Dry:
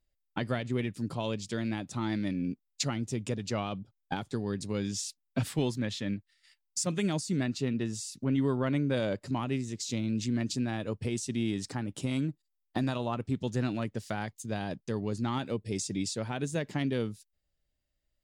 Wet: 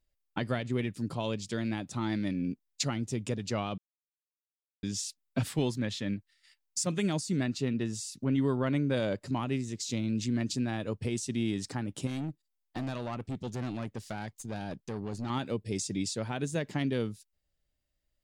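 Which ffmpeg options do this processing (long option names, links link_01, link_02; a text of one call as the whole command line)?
ffmpeg -i in.wav -filter_complex "[0:a]asettb=1/sr,asplit=3[link_01][link_02][link_03];[link_01]atrim=end=12.074[link_04];[link_02]atrim=start=12.07:end=15.3,asetpts=PTS-STARTPTS,afade=type=in:duration=0.004:curve=qsin,afade=type=out:start_time=3.226:duration=0.004:curve=qsin,aeval=exprs='(tanh(35.5*val(0)+0.35)-tanh(0.35))/35.5':channel_layout=same[link_05];[link_03]atrim=start=15.296[link_06];[link_04][link_05]acrossfade=duration=0.004:curve1=hsin:curve2=qsin[link_07];[link_07][link_06]acrossfade=duration=0.004:curve1=qsin:curve2=hsin,asplit=3[link_08][link_09][link_10];[link_08]atrim=end=3.78,asetpts=PTS-STARTPTS,afade=type=out:start_time=3.776:duration=0.004:curve=hsin[link_11];[link_09]atrim=start=3.78:end=4.83,asetpts=PTS-STARTPTS,volume=0[link_12];[link_10]atrim=start=4.83,asetpts=PTS-STARTPTS,afade=type=in:duration=0.004:curve=hsin[link_13];[link_11][link_12][link_13]concat=n=3:v=0:a=1" out.wav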